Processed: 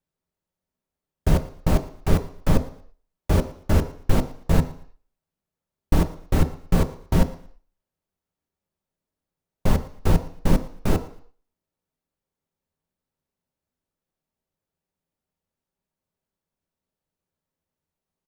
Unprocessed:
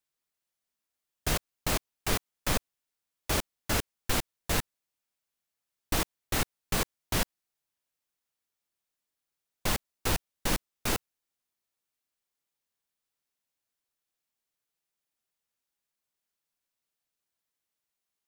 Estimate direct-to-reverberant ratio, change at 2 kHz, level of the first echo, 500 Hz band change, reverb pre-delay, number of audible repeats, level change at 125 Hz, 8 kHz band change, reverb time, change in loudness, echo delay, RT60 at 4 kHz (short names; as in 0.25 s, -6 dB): 8.0 dB, -2.0 dB, -21.5 dB, +9.0 dB, 3 ms, 2, +14.5 dB, -6.5 dB, 0.55 s, +7.0 dB, 0.115 s, 0.55 s